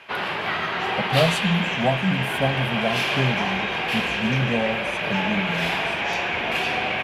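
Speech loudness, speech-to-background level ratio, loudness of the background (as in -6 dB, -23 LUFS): -26.5 LUFS, -3.0 dB, -23.5 LUFS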